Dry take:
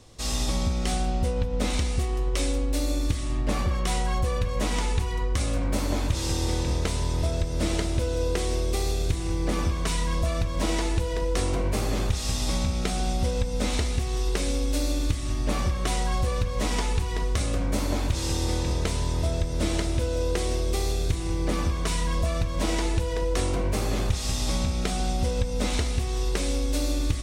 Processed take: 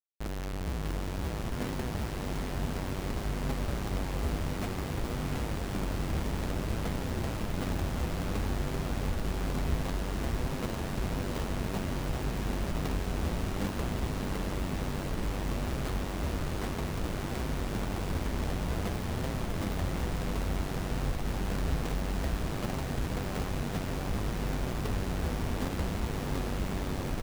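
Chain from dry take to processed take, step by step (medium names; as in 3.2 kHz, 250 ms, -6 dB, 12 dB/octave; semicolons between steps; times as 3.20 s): band-stop 2.6 kHz, Q 19; comb 4.5 ms, depth 85%; Schmitt trigger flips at -21.5 dBFS; flange 0.57 Hz, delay 7.4 ms, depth 5.4 ms, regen +36%; on a send: echo that smears into a reverb 682 ms, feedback 78%, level -4 dB; on the sum: trim -5 dB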